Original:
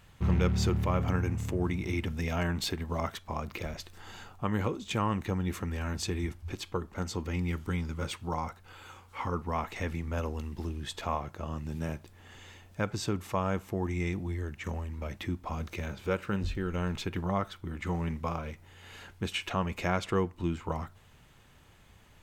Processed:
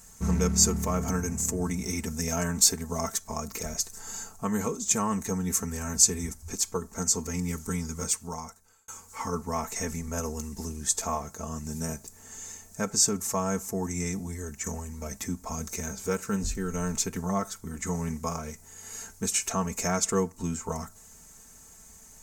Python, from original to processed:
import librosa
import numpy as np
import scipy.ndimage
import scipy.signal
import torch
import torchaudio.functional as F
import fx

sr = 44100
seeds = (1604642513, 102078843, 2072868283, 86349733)

y = fx.edit(x, sr, fx.fade_out_span(start_s=7.97, length_s=0.91), tone=tone)
y = fx.high_shelf_res(y, sr, hz=4700.0, db=13.5, q=3.0)
y = y + 0.71 * np.pad(y, (int(4.5 * sr / 1000.0), 0))[:len(y)]